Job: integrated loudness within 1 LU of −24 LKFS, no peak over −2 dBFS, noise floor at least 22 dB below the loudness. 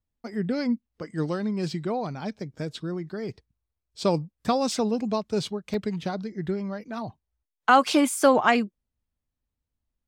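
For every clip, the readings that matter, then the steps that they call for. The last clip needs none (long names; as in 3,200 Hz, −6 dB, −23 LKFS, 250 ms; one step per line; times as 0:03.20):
number of dropouts 3; longest dropout 1.6 ms; integrated loudness −26.5 LKFS; sample peak −3.5 dBFS; target loudness −24.0 LKFS
→ repair the gap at 0:02.21/0:04.72/0:05.74, 1.6 ms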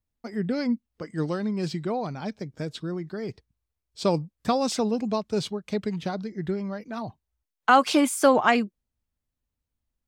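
number of dropouts 0; integrated loudness −26.5 LKFS; sample peak −3.5 dBFS; target loudness −24.0 LKFS
→ level +2.5 dB
brickwall limiter −2 dBFS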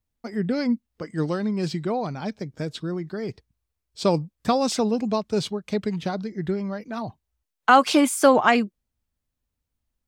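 integrated loudness −24.0 LKFS; sample peak −2.0 dBFS; background noise floor −82 dBFS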